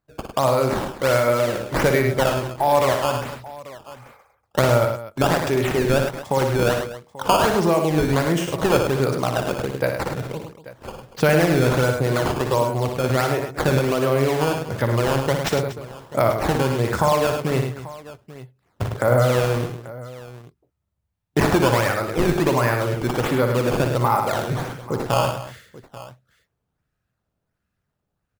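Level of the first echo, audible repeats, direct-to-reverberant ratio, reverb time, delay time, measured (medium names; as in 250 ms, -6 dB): -7.0 dB, 4, no reverb, no reverb, 59 ms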